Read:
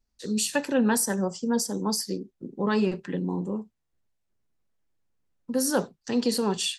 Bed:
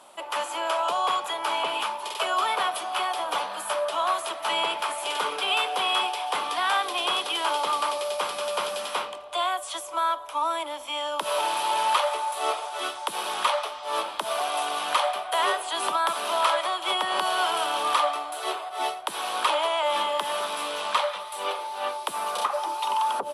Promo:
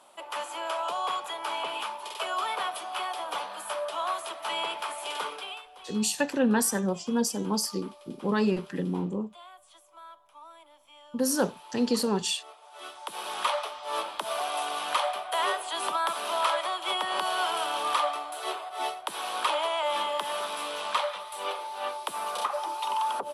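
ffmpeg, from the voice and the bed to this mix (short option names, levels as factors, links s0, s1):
-filter_complex "[0:a]adelay=5650,volume=0.891[s0];[1:a]volume=5.01,afade=t=out:st=5.21:d=0.41:silence=0.133352,afade=t=in:st=12.59:d=0.9:silence=0.105925[s1];[s0][s1]amix=inputs=2:normalize=0"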